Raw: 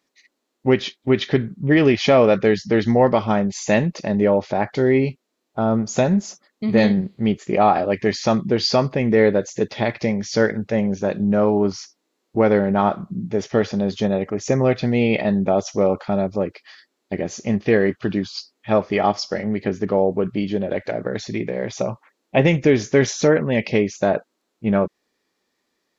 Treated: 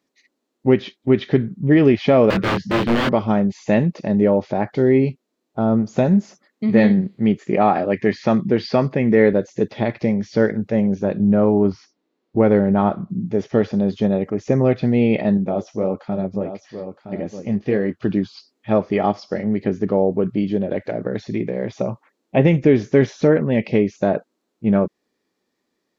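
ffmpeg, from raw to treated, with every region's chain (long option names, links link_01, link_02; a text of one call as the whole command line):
ffmpeg -i in.wav -filter_complex "[0:a]asettb=1/sr,asplit=3[link_01][link_02][link_03];[link_01]atrim=end=2.304[link_04];[link_02]atrim=start=2.3:end=3.09,asetpts=PTS-STARTPTS,afade=type=in:duration=0.004:curve=qsin,afade=type=out:start_time=0.786:duration=0.004:curve=qsin,aeval=exprs='(mod(4.73*val(0)+1,2)-1)/4.73':channel_layout=same,asplit=2[link_05][link_06];[link_06]adelay=26,volume=-2dB[link_07];[link_05][link_07]amix=inputs=2:normalize=0,atrim=end_sample=34839[link_08];[link_03]atrim=start=3.086[link_09];[link_04][link_08]acrossfade=duration=0.004:curve1=hsin:curve2=qsin[link_10];[link_10][link_09]acrossfade=duration=0.004:curve1=qsin:curve2=hsin,asettb=1/sr,asplit=3[link_11][link_12][link_13];[link_11]atrim=end=6.214[link_14];[link_12]atrim=start=6.21:end=9.33,asetpts=PTS-STARTPTS,afade=type=in:duration=0.004:curve=qsin,afade=type=out:start_time=3.116:duration=0.004:curve=qsin,highpass=92,equalizer=frequency=1900:width_type=o:width=0.91:gain=5[link_15];[link_13]atrim=start=9.326[link_16];[link_14][link_15]acrossfade=duration=0.004:curve1=hsin:curve2=qsin[link_17];[link_17][link_16]acrossfade=duration=0.004:curve1=qsin:curve2=hsin,asettb=1/sr,asplit=3[link_18][link_19][link_20];[link_18]atrim=end=11.044[link_21];[link_19]atrim=start=11.04:end=13.1,asetpts=PTS-STARTPTS,afade=type=in:duration=0.004:curve=qsin,afade=type=out:start_time=2.056:duration=0.004:curve=qsin,lowpass=4100,equalizer=frequency=72:width_type=o:width=1.1:gain=5.5[link_22];[link_20]atrim=start=13.096[link_23];[link_21][link_22]acrossfade=duration=0.004:curve1=hsin:curve2=qsin[link_24];[link_24][link_23]acrossfade=duration=0.004:curve1=qsin:curve2=hsin,asettb=1/sr,asplit=3[link_25][link_26][link_27];[link_25]atrim=end=15.374[link_28];[link_26]atrim=start=15.37:end=18,asetpts=PTS-STARTPTS,afade=type=in:duration=0.004:curve=qsin,afade=type=out:start_time=2.626:duration=0.004:curve=qsin,aecho=1:1:966:0.316,atrim=end_sample=115983,flanger=delay=3.6:depth=7.1:regen=-52:speed=1.6:shape=sinusoidal[link_29];[link_27]atrim=start=17.996[link_30];[link_28][link_29]acrossfade=duration=0.004:curve1=hsin:curve2=qsin[link_31];[link_31][link_30]acrossfade=duration=0.004:curve1=qsin:curve2=hsin,acrossover=split=4000[link_32][link_33];[link_33]acompressor=threshold=-47dB:ratio=4:attack=1:release=60[link_34];[link_32][link_34]amix=inputs=2:normalize=0,equalizer=frequency=210:width=0.38:gain=7.5,volume=-4.5dB" out.wav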